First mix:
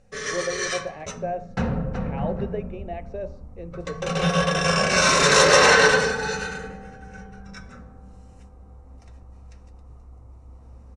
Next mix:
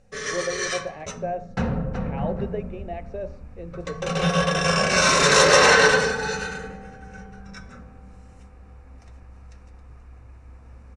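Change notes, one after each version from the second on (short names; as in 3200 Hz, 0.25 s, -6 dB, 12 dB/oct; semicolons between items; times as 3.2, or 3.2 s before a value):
second sound: remove polynomial smoothing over 65 samples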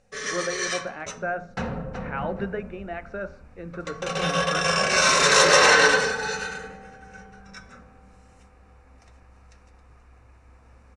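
speech: remove fixed phaser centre 580 Hz, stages 4; master: add low shelf 340 Hz -8.5 dB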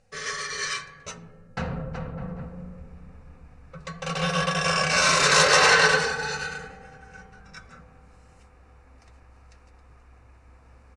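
speech: muted; reverb: off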